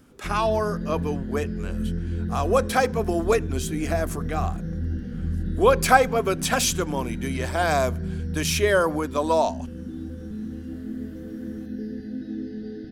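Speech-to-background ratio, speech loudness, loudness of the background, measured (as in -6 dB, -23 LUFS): 7.5 dB, -24.0 LUFS, -31.5 LUFS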